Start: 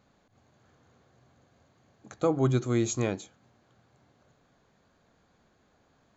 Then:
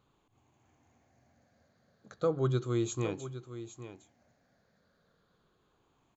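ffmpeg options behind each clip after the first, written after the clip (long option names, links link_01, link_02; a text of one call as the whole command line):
ffmpeg -i in.wav -af "afftfilt=real='re*pow(10,9/40*sin(2*PI*(0.65*log(max(b,1)*sr/1024/100)/log(2)-(-0.35)*(pts-256)/sr)))':imag='im*pow(10,9/40*sin(2*PI*(0.65*log(max(b,1)*sr/1024/100)/log(2)-(-0.35)*(pts-256)/sr)))':win_size=1024:overlap=0.75,aecho=1:1:810:0.237,volume=-6.5dB" out.wav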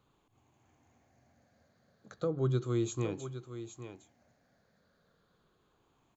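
ffmpeg -i in.wav -filter_complex "[0:a]acrossover=split=440[link_01][link_02];[link_02]acompressor=threshold=-39dB:ratio=5[link_03];[link_01][link_03]amix=inputs=2:normalize=0" out.wav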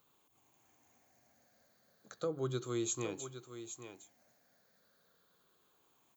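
ffmpeg -i in.wav -af "aemphasis=mode=production:type=bsi,volume=-1.5dB" out.wav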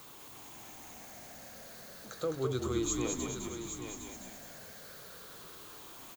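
ffmpeg -i in.wav -filter_complex "[0:a]aeval=exprs='val(0)+0.5*0.00398*sgn(val(0))':channel_layout=same,asplit=2[link_01][link_02];[link_02]asplit=7[link_03][link_04][link_05][link_06][link_07][link_08][link_09];[link_03]adelay=209,afreqshift=-50,volume=-4dB[link_10];[link_04]adelay=418,afreqshift=-100,volume=-9.5dB[link_11];[link_05]adelay=627,afreqshift=-150,volume=-15dB[link_12];[link_06]adelay=836,afreqshift=-200,volume=-20.5dB[link_13];[link_07]adelay=1045,afreqshift=-250,volume=-26.1dB[link_14];[link_08]adelay=1254,afreqshift=-300,volume=-31.6dB[link_15];[link_09]adelay=1463,afreqshift=-350,volume=-37.1dB[link_16];[link_10][link_11][link_12][link_13][link_14][link_15][link_16]amix=inputs=7:normalize=0[link_17];[link_01][link_17]amix=inputs=2:normalize=0,volume=1.5dB" out.wav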